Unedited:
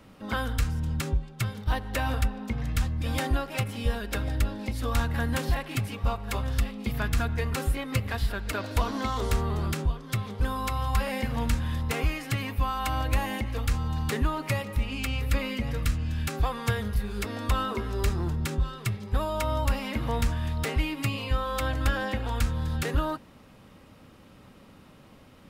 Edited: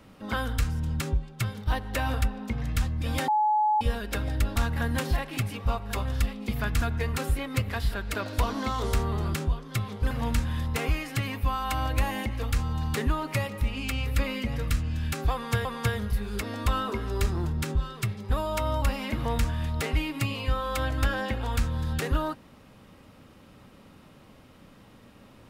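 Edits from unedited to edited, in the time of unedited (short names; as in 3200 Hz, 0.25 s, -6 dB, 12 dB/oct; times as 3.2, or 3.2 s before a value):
3.28–3.81 bleep 851 Hz -20 dBFS
4.56–4.94 cut
10.49–11.26 cut
16.48–16.8 loop, 2 plays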